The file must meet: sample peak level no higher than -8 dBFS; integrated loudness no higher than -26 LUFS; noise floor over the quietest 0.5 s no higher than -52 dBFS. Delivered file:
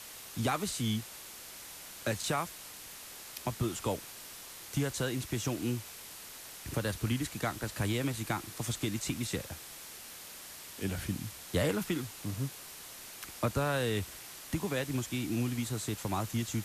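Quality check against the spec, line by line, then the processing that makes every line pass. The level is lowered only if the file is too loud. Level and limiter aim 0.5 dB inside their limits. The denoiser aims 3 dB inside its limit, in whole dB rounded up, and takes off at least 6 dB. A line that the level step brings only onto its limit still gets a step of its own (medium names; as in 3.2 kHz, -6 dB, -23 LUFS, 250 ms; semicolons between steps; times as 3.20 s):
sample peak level -18.5 dBFS: pass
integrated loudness -36.0 LUFS: pass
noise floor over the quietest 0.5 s -48 dBFS: fail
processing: noise reduction 7 dB, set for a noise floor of -48 dBFS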